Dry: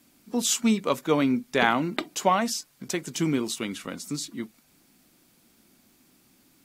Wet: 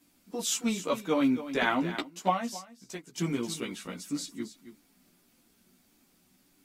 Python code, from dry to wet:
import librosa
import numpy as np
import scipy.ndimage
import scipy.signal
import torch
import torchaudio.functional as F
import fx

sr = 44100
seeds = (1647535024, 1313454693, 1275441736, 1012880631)

p1 = fx.chorus_voices(x, sr, voices=6, hz=0.41, base_ms=14, depth_ms=3.6, mix_pct=50)
p2 = p1 + fx.echo_single(p1, sr, ms=272, db=-12.5, dry=0)
p3 = fx.upward_expand(p2, sr, threshold_db=-44.0, expansion=1.5, at=(2.02, 3.18))
y = p3 * librosa.db_to_amplitude(-2.0)